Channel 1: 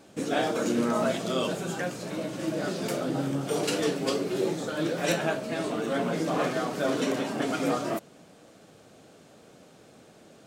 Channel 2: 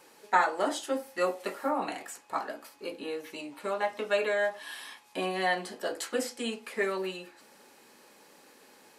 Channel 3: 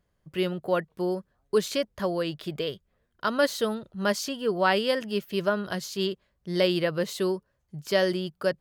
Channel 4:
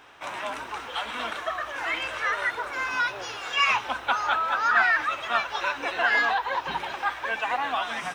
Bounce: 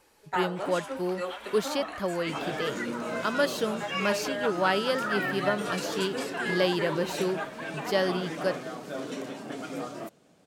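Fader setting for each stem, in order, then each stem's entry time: −8.5, −6.0, −2.5, −10.5 decibels; 2.10, 0.00, 0.00, 0.35 seconds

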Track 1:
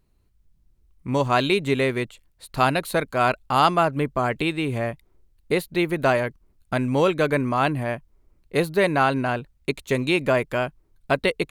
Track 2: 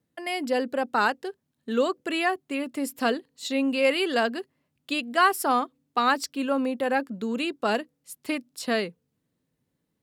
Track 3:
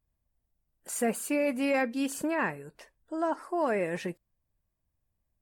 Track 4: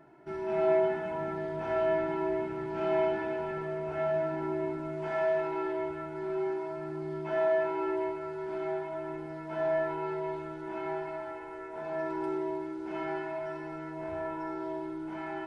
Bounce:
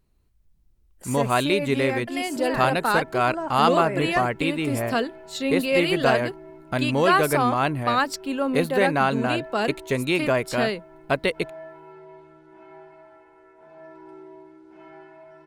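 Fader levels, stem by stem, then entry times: −1.5, +0.5, −1.0, −11.0 decibels; 0.00, 1.90, 0.15, 1.85 seconds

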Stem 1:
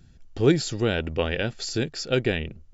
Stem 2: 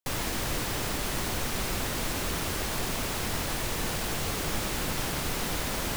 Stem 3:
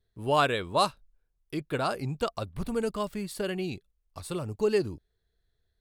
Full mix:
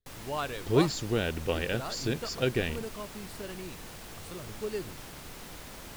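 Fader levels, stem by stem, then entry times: −5.0, −14.0, −10.0 decibels; 0.30, 0.00, 0.00 seconds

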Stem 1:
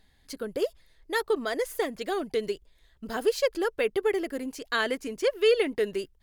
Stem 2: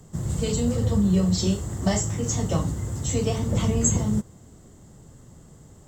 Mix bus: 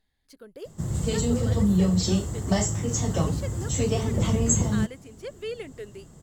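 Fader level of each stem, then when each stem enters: −12.5, −0.5 decibels; 0.00, 0.65 seconds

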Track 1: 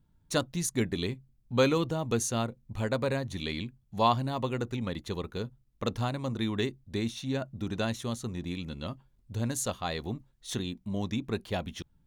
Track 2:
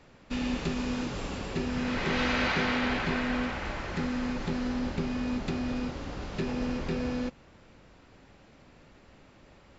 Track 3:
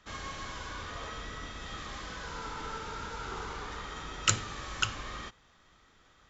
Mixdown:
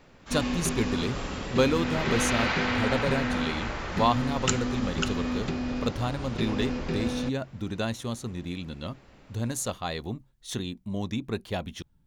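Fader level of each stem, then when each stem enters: +1.0, +1.0, −1.5 decibels; 0.00, 0.00, 0.20 seconds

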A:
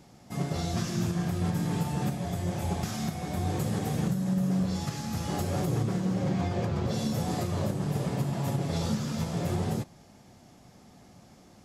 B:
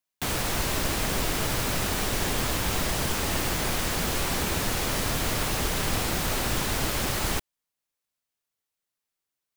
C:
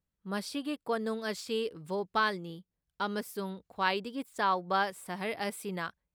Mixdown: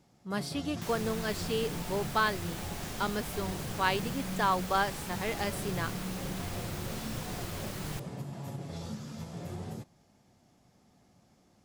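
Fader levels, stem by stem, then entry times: −10.5, −14.0, +0.5 decibels; 0.00, 0.60, 0.00 seconds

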